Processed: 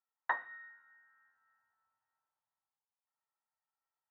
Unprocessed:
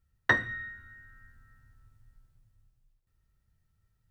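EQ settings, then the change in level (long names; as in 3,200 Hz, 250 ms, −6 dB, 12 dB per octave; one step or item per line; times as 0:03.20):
four-pole ladder band-pass 960 Hz, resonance 65%
+3.0 dB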